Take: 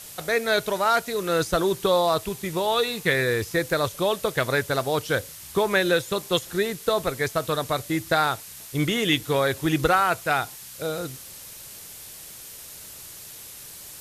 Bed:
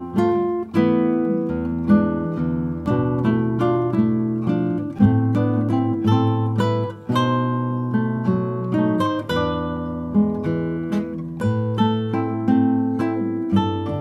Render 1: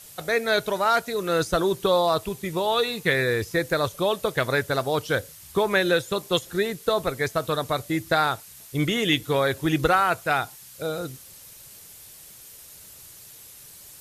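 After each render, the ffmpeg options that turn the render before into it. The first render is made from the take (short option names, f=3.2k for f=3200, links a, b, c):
-af "afftdn=nr=6:nf=-42"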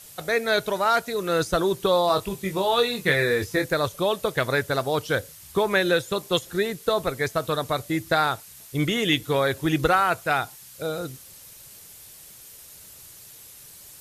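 -filter_complex "[0:a]asettb=1/sr,asplit=3[a][b][c];[a]atrim=end=2.074[d];[b]atrim=start=2.07:end=3.66,asetpts=PTS-STARTPTS,afade=t=in:d=0.004:c=qsin,afade=t=out:st=1.586:d=0.004:c=qsin,asplit=2[e][f];[f]adelay=21,volume=-5.5dB[g];[e][g]amix=inputs=2:normalize=0,atrim=end_sample=70119[h];[c]atrim=start=3.656[i];[d][h]acrossfade=d=0.004:c1=hsin:c2=qsin[j];[j][i]acrossfade=d=0.004:c1=qsin:c2=hsin"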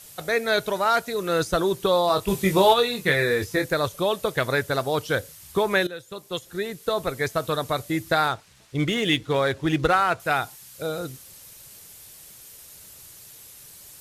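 -filter_complex "[0:a]asplit=3[a][b][c];[a]afade=t=out:st=2.27:d=0.02[d];[b]acontrast=89,afade=t=in:st=2.27:d=0.02,afade=t=out:st=2.72:d=0.02[e];[c]afade=t=in:st=2.72:d=0.02[f];[d][e][f]amix=inputs=3:normalize=0,asettb=1/sr,asplit=3[g][h][i];[g]atrim=end=8.284[j];[h]atrim=start=8.28:end=10.2,asetpts=PTS-STARTPTS,afade=t=in:d=0.004:c=qsin,afade=t=out:st=1.916:d=0.004:c=qsin,adynamicsmooth=sensitivity=7:basefreq=4.4k[k];[i]atrim=start=10.196[l];[j][k]acrossfade=d=0.004:c1=hsin:c2=qsin[m];[m][l]acrossfade=d=0.004:c1=qsin:c2=hsin,asplit=2[n][o];[n]atrim=end=5.87,asetpts=PTS-STARTPTS,afade=t=out:st=5.866:d=0.004:c=hsin:silence=0.125893[p];[o]atrim=start=5.87,asetpts=PTS-STARTPTS,afade=t=in:d=1.37:silence=0.125893[q];[p][q]concat=n=2:v=0:a=1"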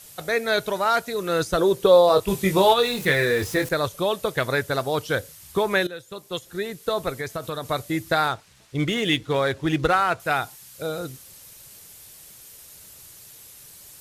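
-filter_complex "[0:a]asettb=1/sr,asplit=3[a][b][c];[a]atrim=end=1.584[d];[b]atrim=start=1.58:end=2.2,asetpts=PTS-STARTPTS,afade=t=in:d=0.004:c=qsin,afade=t=out:st=0.616:d=0.004:c=qsin,equalizer=f=490:w=2.8:g=10.5[e];[c]atrim=start=2.196[f];[d][e]acrossfade=d=0.004:c1=hsin:c2=qsin[g];[g][f]acrossfade=d=0.004:c1=qsin:c2=hsin,asettb=1/sr,asplit=3[h][i][j];[h]atrim=end=2.804[k];[i]atrim=start=2.8:end=3.69,asetpts=PTS-STARTPTS,afade=t=in:d=0.004:c=qsin,afade=t=out:st=0.886:d=0.004:c=qsin,aeval=exprs='val(0)+0.5*0.0237*sgn(val(0))':c=same[l];[j]atrim=start=3.686[m];[k][l]acrossfade=d=0.004:c1=hsin:c2=qsin[n];[n][m]acrossfade=d=0.004:c1=qsin:c2=hsin,asettb=1/sr,asplit=3[o][p][q];[o]atrim=end=7.174[r];[p]atrim=start=7.17:end=7.7,asetpts=PTS-STARTPTS,afade=t=in:d=0.004:c=qsin,afade=t=out:st=0.526:d=0.004:c=qsin,acompressor=threshold=-27dB:ratio=2.5:attack=3.2:release=140:knee=1:detection=peak[s];[q]atrim=start=7.696[t];[r][s]acrossfade=d=0.004:c1=hsin:c2=qsin[u];[u][t]acrossfade=d=0.004:c1=qsin:c2=hsin"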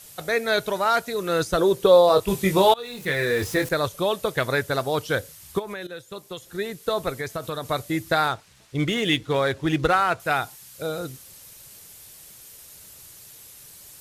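-filter_complex "[0:a]asplit=3[a][b][c];[a]afade=t=out:st=5.58:d=0.02[d];[b]acompressor=threshold=-29dB:ratio=16:attack=3.2:release=140:knee=1:detection=peak,afade=t=in:st=5.58:d=0.02,afade=t=out:st=6.57:d=0.02[e];[c]afade=t=in:st=6.57:d=0.02[f];[d][e][f]amix=inputs=3:normalize=0,asplit=2[g][h];[g]atrim=end=2.74,asetpts=PTS-STARTPTS,afade=t=out:st=2.736:d=0.004:c=hsin:silence=0.0841395[i];[h]atrim=start=2.74,asetpts=PTS-STARTPTS,afade=t=in:d=0.69:silence=0.0841395[j];[i][j]concat=n=2:v=0:a=1"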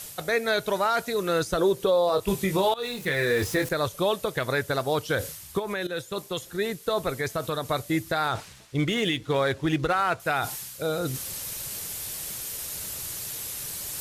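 -af "areverse,acompressor=mode=upward:threshold=-23dB:ratio=2.5,areverse,alimiter=limit=-14.5dB:level=0:latency=1:release=131"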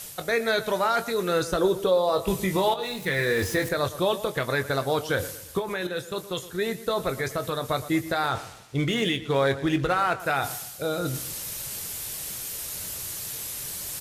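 -filter_complex "[0:a]asplit=2[a][b];[b]adelay=22,volume=-11dB[c];[a][c]amix=inputs=2:normalize=0,asplit=2[d][e];[e]adelay=117,lowpass=f=3.6k:p=1,volume=-15dB,asplit=2[f][g];[g]adelay=117,lowpass=f=3.6k:p=1,volume=0.42,asplit=2[h][i];[i]adelay=117,lowpass=f=3.6k:p=1,volume=0.42,asplit=2[j][k];[k]adelay=117,lowpass=f=3.6k:p=1,volume=0.42[l];[d][f][h][j][l]amix=inputs=5:normalize=0"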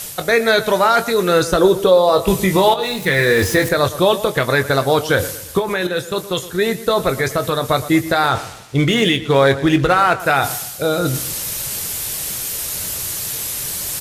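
-af "volume=10dB"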